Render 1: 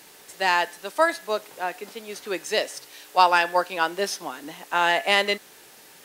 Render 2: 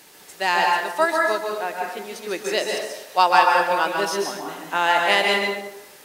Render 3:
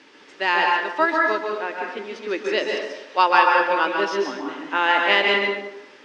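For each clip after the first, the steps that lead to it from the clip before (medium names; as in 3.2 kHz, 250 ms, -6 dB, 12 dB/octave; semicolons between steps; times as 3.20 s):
plate-style reverb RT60 0.93 s, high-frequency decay 0.6×, pre-delay 120 ms, DRR 0 dB
cabinet simulation 170–4600 Hz, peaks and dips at 170 Hz -10 dB, 270 Hz +9 dB, 720 Hz -9 dB, 4.1 kHz -7 dB; trim +2 dB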